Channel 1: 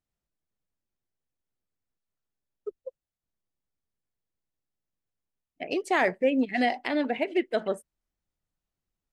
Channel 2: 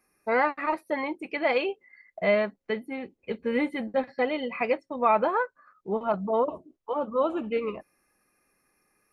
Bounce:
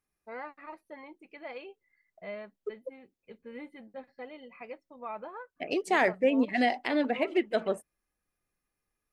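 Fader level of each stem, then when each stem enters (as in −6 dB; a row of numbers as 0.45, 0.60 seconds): −1.0, −17.5 decibels; 0.00, 0.00 seconds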